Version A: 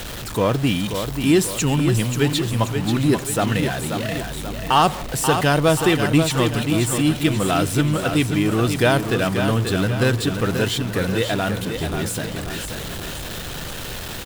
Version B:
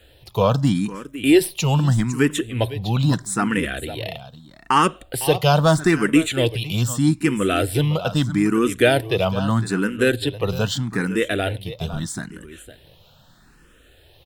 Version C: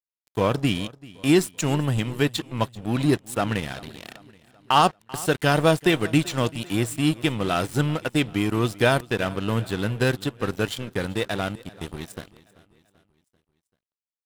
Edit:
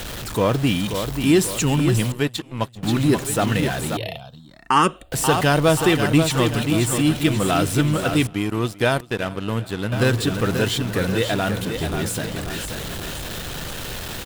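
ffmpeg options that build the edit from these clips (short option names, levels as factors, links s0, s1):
-filter_complex "[2:a]asplit=2[s0][s1];[0:a]asplit=4[s2][s3][s4][s5];[s2]atrim=end=2.122[s6];[s0]atrim=start=2.118:end=2.832[s7];[s3]atrim=start=2.828:end=3.972[s8];[1:a]atrim=start=3.968:end=5.122[s9];[s4]atrim=start=5.118:end=8.272[s10];[s1]atrim=start=8.268:end=9.922[s11];[s5]atrim=start=9.918[s12];[s6][s7]acrossfade=d=0.004:c1=hsin:c2=hsin[s13];[s13][s8]acrossfade=d=0.004:c1=hsin:c2=hsin[s14];[s14][s9]acrossfade=d=0.004:c1=hsin:c2=hsin[s15];[s15][s10]acrossfade=d=0.004:c1=hsin:c2=hsin[s16];[s16][s11]acrossfade=d=0.004:c1=hsin:c2=hsin[s17];[s17][s12]acrossfade=d=0.004:c1=hsin:c2=hsin"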